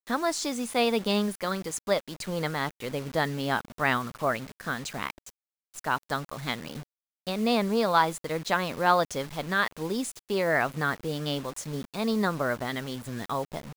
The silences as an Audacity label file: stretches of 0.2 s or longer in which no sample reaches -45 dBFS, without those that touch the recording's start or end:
5.300000	5.740000	silence
6.830000	7.270000	silence